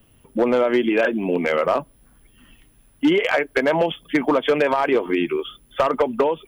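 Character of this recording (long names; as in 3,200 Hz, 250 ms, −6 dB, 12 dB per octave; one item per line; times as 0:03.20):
background noise floor −56 dBFS
spectral slope −3.5 dB per octave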